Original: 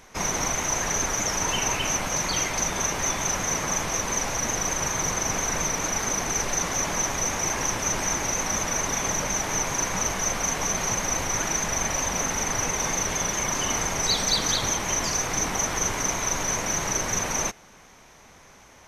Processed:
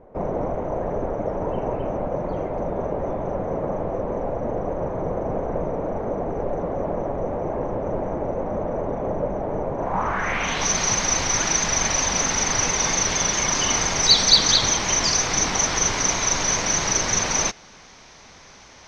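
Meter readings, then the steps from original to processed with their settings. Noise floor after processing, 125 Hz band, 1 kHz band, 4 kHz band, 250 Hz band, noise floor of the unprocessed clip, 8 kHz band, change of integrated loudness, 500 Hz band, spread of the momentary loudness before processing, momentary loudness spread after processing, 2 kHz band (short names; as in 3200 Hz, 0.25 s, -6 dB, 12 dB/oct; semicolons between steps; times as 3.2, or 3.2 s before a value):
-47 dBFS, +3.0 dB, +2.0 dB, +6.5 dB, +4.0 dB, -51 dBFS, +1.0 dB, +2.5 dB, +7.5 dB, 1 LU, 9 LU, +1.0 dB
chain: low-pass sweep 570 Hz -> 4900 Hz, 9.76–10.68; gain +3 dB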